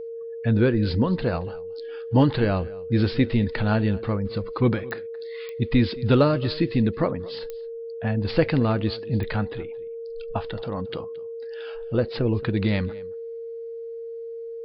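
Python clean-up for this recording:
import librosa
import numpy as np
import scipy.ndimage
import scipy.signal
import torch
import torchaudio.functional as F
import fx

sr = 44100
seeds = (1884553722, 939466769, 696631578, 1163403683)

y = fx.fix_declick_ar(x, sr, threshold=10.0)
y = fx.notch(y, sr, hz=460.0, q=30.0)
y = fx.fix_echo_inverse(y, sr, delay_ms=222, level_db=-21.0)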